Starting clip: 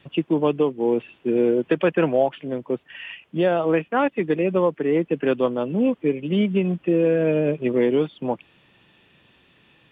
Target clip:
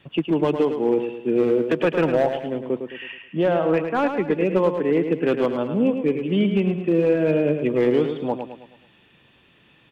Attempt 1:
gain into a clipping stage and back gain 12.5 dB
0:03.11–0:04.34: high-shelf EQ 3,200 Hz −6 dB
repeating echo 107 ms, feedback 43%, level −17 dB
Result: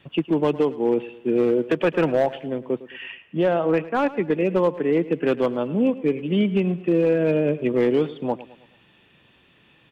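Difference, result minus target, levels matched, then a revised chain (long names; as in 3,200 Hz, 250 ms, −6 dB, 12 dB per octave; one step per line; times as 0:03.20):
echo-to-direct −9.5 dB
gain into a clipping stage and back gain 12.5 dB
0:03.11–0:04.34: high-shelf EQ 3,200 Hz −6 dB
repeating echo 107 ms, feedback 43%, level −7.5 dB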